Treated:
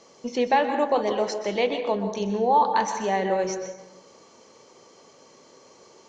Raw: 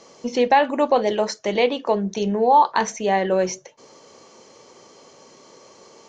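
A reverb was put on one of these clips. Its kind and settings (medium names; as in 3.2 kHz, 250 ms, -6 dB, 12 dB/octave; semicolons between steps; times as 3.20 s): plate-style reverb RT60 1 s, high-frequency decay 0.5×, pre-delay 115 ms, DRR 6.5 dB; trim -5 dB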